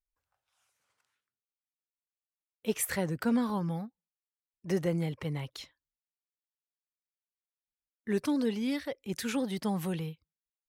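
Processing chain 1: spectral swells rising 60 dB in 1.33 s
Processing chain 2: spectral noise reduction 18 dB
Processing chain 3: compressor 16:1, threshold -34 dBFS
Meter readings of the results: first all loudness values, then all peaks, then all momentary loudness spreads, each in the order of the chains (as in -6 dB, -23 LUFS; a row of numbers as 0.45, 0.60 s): -30.5, -32.5, -40.0 LUFS; -13.0, -17.5, -24.5 dBFS; 16, 13, 8 LU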